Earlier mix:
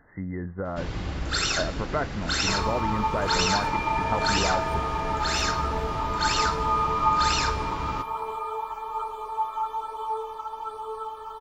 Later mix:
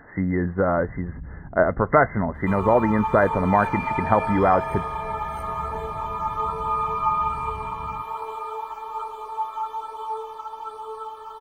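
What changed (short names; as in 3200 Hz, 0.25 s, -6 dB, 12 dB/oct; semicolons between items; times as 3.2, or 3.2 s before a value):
speech +11.5 dB; first sound: add inverse Chebyshev low-pass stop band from 1200 Hz, stop band 80 dB; master: add low shelf 120 Hz -7 dB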